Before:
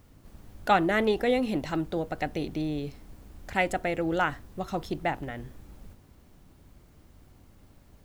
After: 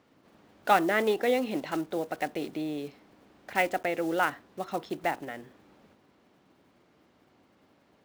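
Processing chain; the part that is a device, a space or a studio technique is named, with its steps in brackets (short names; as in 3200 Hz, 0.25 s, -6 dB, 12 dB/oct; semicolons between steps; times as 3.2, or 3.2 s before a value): early digital voice recorder (BPF 270–4000 Hz; block floating point 5-bit)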